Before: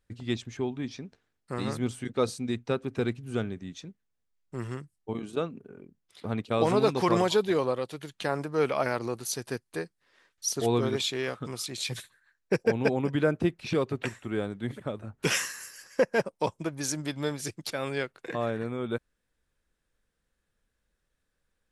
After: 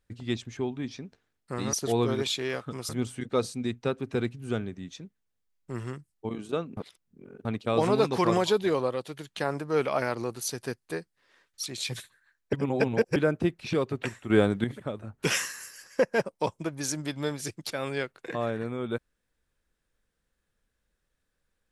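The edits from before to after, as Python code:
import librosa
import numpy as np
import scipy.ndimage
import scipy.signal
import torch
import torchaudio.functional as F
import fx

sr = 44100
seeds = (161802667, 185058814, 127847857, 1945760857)

y = fx.edit(x, sr, fx.reverse_span(start_s=5.61, length_s=0.68),
    fx.move(start_s=10.47, length_s=1.16, to_s=1.73),
    fx.reverse_span(start_s=12.53, length_s=0.63),
    fx.clip_gain(start_s=14.3, length_s=0.34, db=9.5), tone=tone)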